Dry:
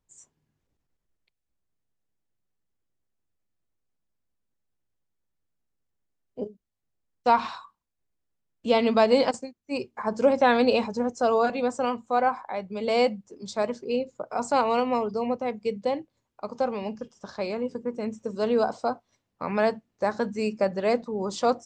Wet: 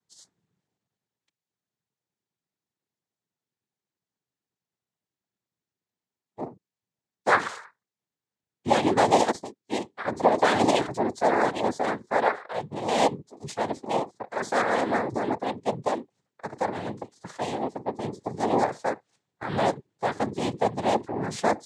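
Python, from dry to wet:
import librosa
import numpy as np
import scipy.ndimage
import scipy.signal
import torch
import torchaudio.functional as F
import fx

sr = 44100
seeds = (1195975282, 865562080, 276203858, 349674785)

y = fx.tracing_dist(x, sr, depth_ms=0.07)
y = fx.noise_vocoder(y, sr, seeds[0], bands=6)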